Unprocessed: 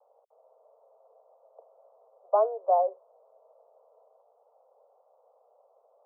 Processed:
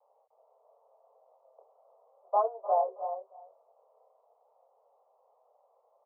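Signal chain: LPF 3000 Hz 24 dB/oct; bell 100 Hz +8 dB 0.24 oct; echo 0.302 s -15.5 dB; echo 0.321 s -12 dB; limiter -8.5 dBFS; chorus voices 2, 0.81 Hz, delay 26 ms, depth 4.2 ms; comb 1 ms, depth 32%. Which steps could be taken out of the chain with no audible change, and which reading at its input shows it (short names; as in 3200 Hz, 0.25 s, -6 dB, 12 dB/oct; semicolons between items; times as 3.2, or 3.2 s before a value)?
LPF 3000 Hz: input band ends at 1300 Hz; bell 100 Hz: input band starts at 380 Hz; limiter -8.5 dBFS: input peak -12.5 dBFS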